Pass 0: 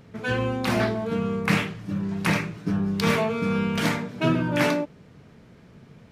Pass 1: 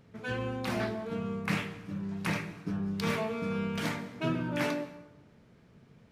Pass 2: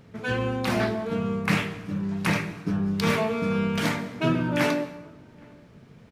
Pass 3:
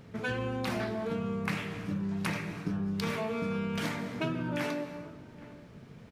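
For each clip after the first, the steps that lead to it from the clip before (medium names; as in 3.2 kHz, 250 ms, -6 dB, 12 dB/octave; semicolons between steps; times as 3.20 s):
plate-style reverb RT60 0.96 s, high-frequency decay 0.7×, pre-delay 115 ms, DRR 15.5 dB; trim -9 dB
echo from a far wall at 140 m, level -28 dB; trim +7.5 dB
compression, threshold -30 dBFS, peak gain reduction 12 dB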